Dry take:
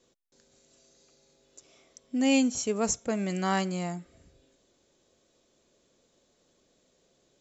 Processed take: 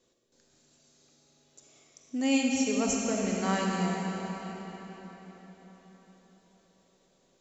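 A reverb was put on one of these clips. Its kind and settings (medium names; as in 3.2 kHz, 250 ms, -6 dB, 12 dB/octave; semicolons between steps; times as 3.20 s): algorithmic reverb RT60 4.7 s, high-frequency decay 0.85×, pre-delay 5 ms, DRR -1.5 dB; trim -3.5 dB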